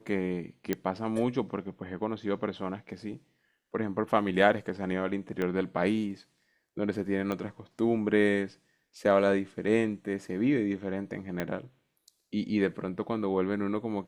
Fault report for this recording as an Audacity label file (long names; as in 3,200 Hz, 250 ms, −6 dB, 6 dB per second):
0.730000	0.730000	click −14 dBFS
5.420000	5.420000	click −19 dBFS
7.320000	7.320000	click −20 dBFS
11.400000	11.400000	click −17 dBFS